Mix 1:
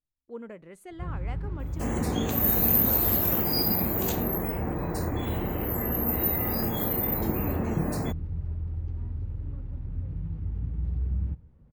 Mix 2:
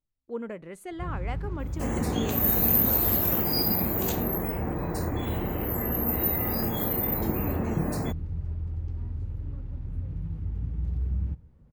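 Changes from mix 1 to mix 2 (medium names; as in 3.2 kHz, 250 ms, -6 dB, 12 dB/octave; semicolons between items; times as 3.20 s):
speech +5.5 dB; first sound: remove distance through air 130 m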